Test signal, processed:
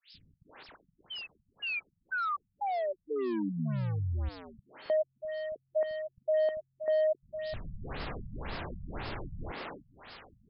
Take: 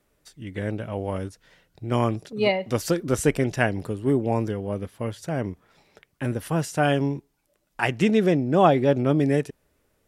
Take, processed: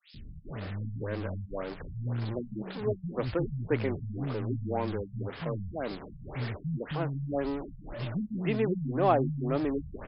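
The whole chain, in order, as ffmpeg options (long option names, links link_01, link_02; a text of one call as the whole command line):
ffmpeg -i in.wav -filter_complex "[0:a]aeval=exprs='val(0)+0.5*0.0562*sgn(val(0))':channel_layout=same,acrossover=split=220|3400[link_01][link_02][link_03];[link_01]adelay=140[link_04];[link_02]adelay=450[link_05];[link_04][link_05][link_03]amix=inputs=3:normalize=0,afftfilt=real='re*lt(b*sr/1024,200*pow(5400/200,0.5+0.5*sin(2*PI*1.9*pts/sr)))':imag='im*lt(b*sr/1024,200*pow(5400/200,0.5+0.5*sin(2*PI*1.9*pts/sr)))':win_size=1024:overlap=0.75,volume=-7.5dB" out.wav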